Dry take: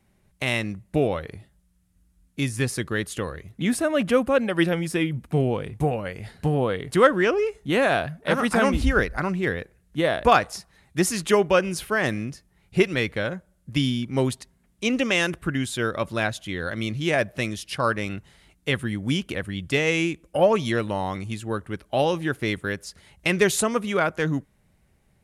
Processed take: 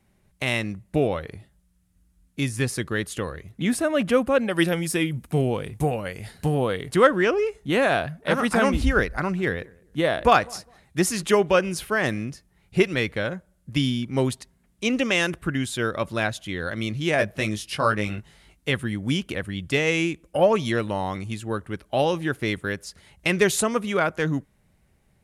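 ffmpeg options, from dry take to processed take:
-filter_complex "[0:a]asettb=1/sr,asplit=3[a][b][c];[a]atrim=end=4.514[d];[b]atrim=start=4.51:end=6.89,asetpts=PTS-STARTPTS,afade=t=in:d=0.004:c=qsin,afade=t=out:st=2.376:d=0.004:c=qsin,aemphasis=mode=production:type=cd[e];[c]atrim=start=6.886[f];[d][e]acrossfade=d=0.004:c1=hsin:c2=qsin[g];[g][f]acrossfade=d=0.004:c1=qsin:c2=hsin,asettb=1/sr,asplit=3[h][i][j];[h]atrim=end=9.094[k];[i]atrim=start=9.09:end=11.57,asetpts=PTS-STARTPTS,afade=t=in:d=0.004:c=qsin,afade=t=out:st=2.476:d=0.004:c=qsin,asplit=2[l][m];[m]adelay=203,lowpass=f=990:p=1,volume=-24dB,asplit=2[n][o];[o]adelay=203,lowpass=f=990:p=1,volume=0.25[p];[l][n][p]amix=inputs=3:normalize=0,atrim=end_sample=109368[q];[j]atrim=start=11.566[r];[k][q]acrossfade=d=0.004:c1=hsin:c2=qsin[s];[s][r]acrossfade=d=0.004:c1=qsin:c2=hsin,asettb=1/sr,asplit=3[t][u][v];[t]atrim=end=17.174[w];[u]atrim=start=17.17:end=18.7,asetpts=PTS-STARTPTS,afade=t=in:d=0.004:c=qsin,afade=t=out:st=1.526:d=0.004:c=qsin,asplit=2[x][y];[y]adelay=19,volume=-5dB[z];[x][z]amix=inputs=2:normalize=0,atrim=end_sample=67473[aa];[v]atrim=start=18.696[ab];[w][aa]acrossfade=d=0.004:c1=hsin:c2=qsin[ac];[ac][ab]acrossfade=d=0.004:c1=qsin:c2=hsin"

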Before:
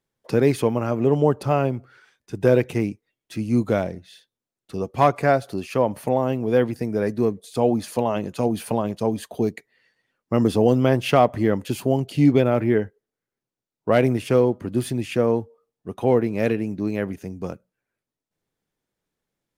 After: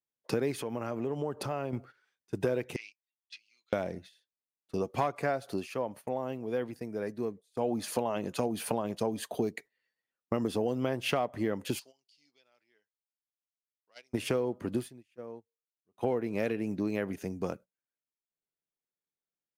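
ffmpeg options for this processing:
-filter_complex "[0:a]asettb=1/sr,asplit=3[a][b][c];[a]atrim=end=0.594[d];[b]atrim=start=0.59:end=1.73,asetpts=PTS-STARTPTS,afade=t=in:d=0.004:c=qsin,afade=t=out:st=1.136:d=0.004:c=qsin,acompressor=threshold=-30dB:ratio=3:attack=3.2:release=140:knee=1:detection=peak[e];[c]atrim=start=1.726[f];[d][e]acrossfade=d=0.004:c1=hsin:c2=qsin[g];[g][f]acrossfade=d=0.004:c1=qsin:c2=hsin,asettb=1/sr,asplit=3[h][i][j];[h]atrim=end=2.764[k];[i]atrim=start=2.76:end=3.73,asetpts=PTS-STARTPTS,afade=t=in:d=0.004:c=qsin,afade=t=out:st=0.966:d=0.004:c=qsin,asuperpass=centerf=3600:order=4:qfactor=1.3[l];[j]atrim=start=3.726[m];[k][l]acrossfade=d=0.004:c1=hsin:c2=qsin[n];[n][m]acrossfade=d=0.004:c1=qsin:c2=hsin,asplit=3[o][p][q];[o]afade=t=out:st=11.78:d=0.02[r];[p]bandpass=f=5k:t=q:w=4.7,afade=t=in:st=11.78:d=0.02,afade=t=out:st=14.13:d=0.02[s];[q]afade=t=in:st=14.13:d=0.02[t];[r][s][t]amix=inputs=3:normalize=0,asplit=5[u][v][w][x][y];[u]atrim=end=5.78,asetpts=PTS-STARTPTS,afade=t=out:st=5.56:d=0.22:c=qua:silence=0.298538[z];[v]atrim=start=5.78:end=7.5,asetpts=PTS-STARTPTS,volume=-10.5dB[aa];[w]atrim=start=7.5:end=14.89,asetpts=PTS-STARTPTS,afade=t=in:d=0.22:c=qua:silence=0.298538,afade=t=out:st=7.25:d=0.14:silence=0.0749894[ab];[x]atrim=start=14.89:end=15.93,asetpts=PTS-STARTPTS,volume=-22.5dB[ac];[y]atrim=start=15.93,asetpts=PTS-STARTPTS,afade=t=in:d=0.14:silence=0.0749894[ad];[z][aa][ab][ac][ad]concat=n=5:v=0:a=1,agate=range=-18dB:threshold=-43dB:ratio=16:detection=peak,lowshelf=f=160:g=-9.5,acompressor=threshold=-27dB:ratio=6"

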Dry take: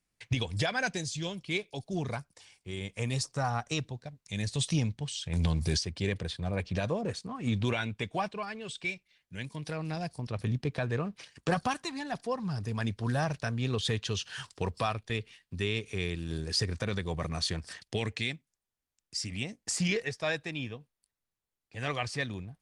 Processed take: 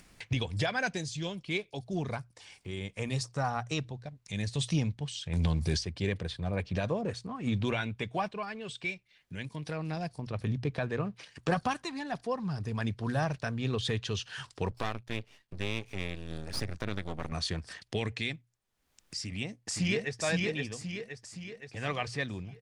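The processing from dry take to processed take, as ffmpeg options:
-filter_complex "[0:a]asettb=1/sr,asplit=3[a][b][c];[a]atrim=end=14.704[d];[b]atrim=start=14.7:end=17.32,asetpts=PTS-STARTPTS,afade=t=in:d=0.004:c=qsin,afade=t=out:st=2.616:d=0.004:c=qsin,aeval=exprs='max(val(0),0)':c=same[e];[c]atrim=start=17.316[f];[d][e]acrossfade=d=0.004:c1=hsin:c2=qsin[g];[g][f]acrossfade=d=0.004:c1=qsin:c2=hsin,asplit=2[h][i];[i]afade=t=in:st=19.19:d=0.01,afade=t=out:st=20.21:d=0.01,aecho=0:1:520|1040|1560|2080|2600|3120:0.794328|0.357448|0.160851|0.0723832|0.0325724|0.0146576[j];[h][j]amix=inputs=2:normalize=0,acompressor=mode=upward:threshold=-37dB:ratio=2.5,highshelf=f=5.8k:g=-7,bandreject=f=60:t=h:w=6,bandreject=f=120:t=h:w=6"

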